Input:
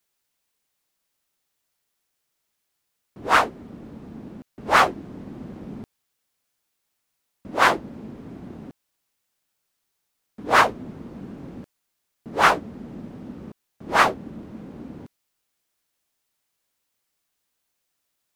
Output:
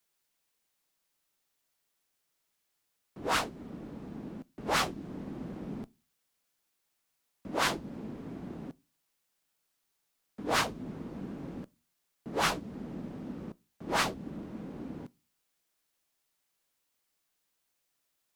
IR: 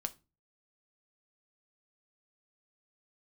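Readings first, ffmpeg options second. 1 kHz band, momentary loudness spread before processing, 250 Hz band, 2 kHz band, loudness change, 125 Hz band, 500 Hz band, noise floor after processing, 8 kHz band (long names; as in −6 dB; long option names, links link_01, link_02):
−13.5 dB, 21 LU, −4.5 dB, −12.5 dB, −15.0 dB, −4.0 dB, −9.5 dB, −80 dBFS, −2.5 dB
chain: -filter_complex "[0:a]equalizer=frequency=98:width_type=o:width=0.86:gain=-4,acrossover=split=260|3000[link_01][link_02][link_03];[link_02]acompressor=threshold=-27dB:ratio=6[link_04];[link_01][link_04][link_03]amix=inputs=3:normalize=0,asplit=2[link_05][link_06];[1:a]atrim=start_sample=2205[link_07];[link_06][link_07]afir=irnorm=-1:irlink=0,volume=-6.5dB[link_08];[link_05][link_08]amix=inputs=2:normalize=0,volume=-5.5dB"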